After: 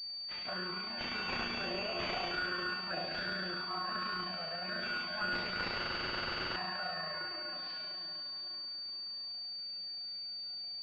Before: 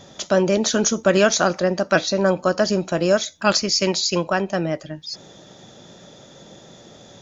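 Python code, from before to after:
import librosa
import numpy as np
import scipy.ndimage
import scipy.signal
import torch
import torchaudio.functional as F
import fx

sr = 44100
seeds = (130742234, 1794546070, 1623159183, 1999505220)

y = fx.spec_trails(x, sr, decay_s=1.78)
y = fx.rev_spring(y, sr, rt60_s=2.9, pass_ms=(31, 42), chirp_ms=65, drr_db=3.5)
y = fx.env_flanger(y, sr, rest_ms=11.0, full_db=-7.5)
y = fx.peak_eq(y, sr, hz=430.0, db=-9.0, octaves=1.1)
y = fx.comb_fb(y, sr, f0_hz=360.0, decay_s=0.47, harmonics='all', damping=0.0, mix_pct=90)
y = fx.stretch_grains(y, sr, factor=1.5, grain_ms=70.0)
y = fx.tilt_eq(y, sr, slope=2.5)
y = fx.clip_asym(y, sr, top_db=-30.5, bottom_db=-18.0)
y = fx.buffer_glitch(y, sr, at_s=(5.77,), block=2048, repeats=16)
y = fx.pwm(y, sr, carrier_hz=4600.0)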